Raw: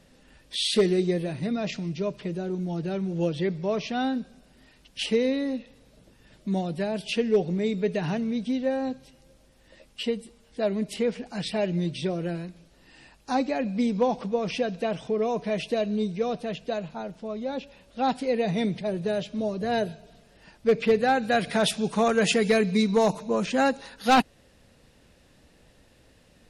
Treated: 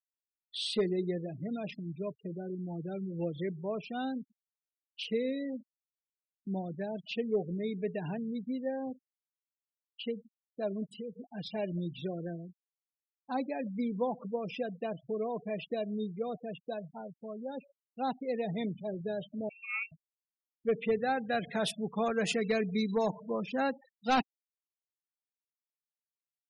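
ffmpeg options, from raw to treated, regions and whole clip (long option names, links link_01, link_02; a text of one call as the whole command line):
ffmpeg -i in.wav -filter_complex "[0:a]asettb=1/sr,asplit=3[link_01][link_02][link_03];[link_01]atrim=end=10.864[link_04];[link_02]atrim=start=10.86:end=11.31,asetpts=PTS-STARTPTS,afade=type=in:duration=0.004:curve=qsin,afade=type=out:start_time=0.446:duration=0.004:curve=qsin,equalizer=frequency=73:width=0.44:gain=2.5,acompressor=threshold=-29dB:ratio=4:attack=3.2:release=140:knee=1:detection=peak[link_05];[link_03]atrim=start=11.306[link_06];[link_04][link_05]acrossfade=duration=0.004:curve1=hsin:curve2=qsin[link_07];[link_07][link_06]acrossfade=duration=0.004:curve1=qsin:curve2=hsin,asettb=1/sr,asplit=3[link_08][link_09][link_10];[link_08]atrim=end=19.494[link_11];[link_09]atrim=start=19.49:end=19.92,asetpts=PTS-STARTPTS,afade=type=in:duration=0.004:curve=qsin,afade=type=out:start_time=0.426:duration=0.004:curve=qsin,lowpass=frequency=2500:width_type=q:width=0.5098,lowpass=frequency=2500:width_type=q:width=0.6013,lowpass=frequency=2500:width_type=q:width=0.9,lowpass=frequency=2500:width_type=q:width=2.563,afreqshift=-2900,bandreject=frequency=134.1:width_type=h:width=4,bandreject=frequency=268.2:width_type=h:width=4,bandreject=frequency=402.3:width_type=h:width=4,bandreject=frequency=536.4:width_type=h:width=4,bandreject=frequency=670.5:width_type=h:width=4,bandreject=frequency=804.6:width_type=h:width=4,bandreject=frequency=938.7:width_type=h:width=4,bandreject=frequency=1072.8:width_type=h:width=4,bandreject=frequency=1206.9:width_type=h:width=4,bandreject=frequency=1341:width_type=h:width=4,bandreject=frequency=1475.1:width_type=h:width=4,bandreject=frequency=1609.2:width_type=h:width=4,bandreject=frequency=1743.3:width_type=h:width=4,bandreject=frequency=1877.4:width_type=h:width=4,bandreject=frequency=2011.5:width_type=h:width=4,bandreject=frequency=2145.6:width_type=h:width=4,bandreject=frequency=2279.7:width_type=h:width=4,bandreject=frequency=2413.8:width_type=h:width=4,bandreject=frequency=2547.9:width_type=h:width=4,bandreject=frequency=2682:width_type=h:width=4,bandreject=frequency=2816.1:width_type=h:width=4,bandreject=frequency=2950.2:width_type=h:width=4,bandreject=frequency=3084.3:width_type=h:width=4,bandreject=frequency=3218.4:width_type=h:width=4,bandreject=frequency=3352.5:width_type=h:width=4,bandreject=frequency=3486.6:width_type=h:width=4,bandreject=frequency=3620.7:width_type=h:width=4,bandreject=frequency=3754.8:width_type=h:width=4,bandreject=frequency=3888.9:width_type=h:width=4,bandreject=frequency=4023:width_type=h:width=4,bandreject=frequency=4157.1:width_type=h:width=4,bandreject=frequency=4291.2:width_type=h:width=4,bandreject=frequency=4425.3:width_type=h:width=4,bandreject=frequency=4559.4:width_type=h:width=4,bandreject=frequency=4693.5:width_type=h:width=4,bandreject=frequency=4827.6:width_type=h:width=4,bandreject=frequency=4961.7:width_type=h:width=4,agate=range=-33dB:threshold=-23dB:ratio=3:release=100:detection=peak[link_12];[link_10]atrim=start=19.916[link_13];[link_11][link_12]acrossfade=duration=0.004:curve1=hsin:curve2=qsin[link_14];[link_14][link_13]acrossfade=duration=0.004:curve1=qsin:curve2=hsin,agate=range=-8dB:threshold=-44dB:ratio=16:detection=peak,afftfilt=real='re*gte(hypot(re,im),0.0316)':imag='im*gte(hypot(re,im),0.0316)':win_size=1024:overlap=0.75,volume=-8.5dB" out.wav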